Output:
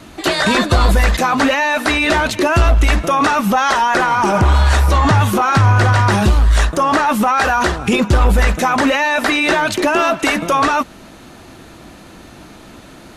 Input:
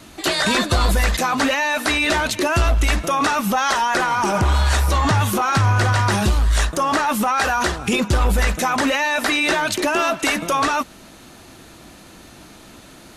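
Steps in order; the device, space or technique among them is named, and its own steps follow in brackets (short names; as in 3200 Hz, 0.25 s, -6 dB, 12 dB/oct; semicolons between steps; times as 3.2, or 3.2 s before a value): behind a face mask (high shelf 3500 Hz -7.5 dB); gain +5.5 dB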